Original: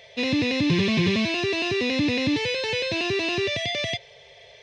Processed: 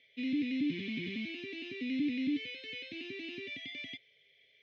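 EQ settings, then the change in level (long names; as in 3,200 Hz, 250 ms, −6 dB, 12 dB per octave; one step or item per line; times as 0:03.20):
formant filter i
−4.0 dB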